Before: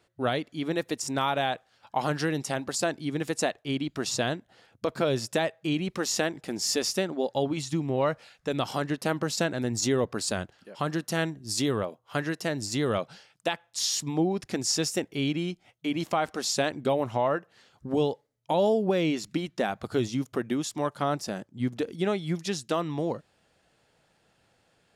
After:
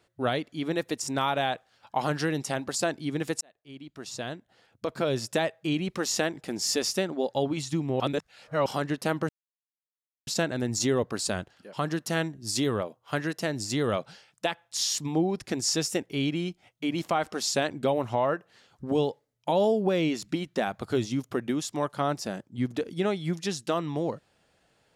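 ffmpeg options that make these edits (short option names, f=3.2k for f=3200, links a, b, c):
-filter_complex "[0:a]asplit=5[a][b][c][d][e];[a]atrim=end=3.41,asetpts=PTS-STARTPTS,afade=t=out:st=3.406:d=0.004:c=hsin[f];[b]atrim=start=3.41:end=8.002,asetpts=PTS-STARTPTS,afade=t=in:d=1.95[g];[c]atrim=start=7.998:end=8.662,asetpts=PTS-STARTPTS,areverse[h];[d]atrim=start=8.658:end=9.29,asetpts=PTS-STARTPTS,afade=t=out:st=0.628:d=0.004:c=hsin,apad=pad_dur=0.98[i];[e]atrim=start=9.29,asetpts=PTS-STARTPTS,afade=t=in:d=0.004:c=hsin[j];[f][g]concat=n=2:v=0:a=1[k];[k][h]acrossfade=d=0.004:c1=hsin:c2=hsin[l];[i][j]concat=n=2:v=0:a=1[m];[l][m]acrossfade=d=0.004:c1=hsin:c2=hsin"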